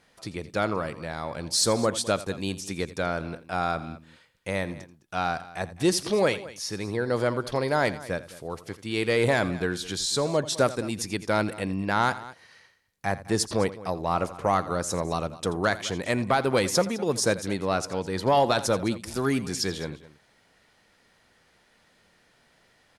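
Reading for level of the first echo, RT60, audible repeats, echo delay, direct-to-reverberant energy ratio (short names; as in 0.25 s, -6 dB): -16.5 dB, none, 2, 84 ms, none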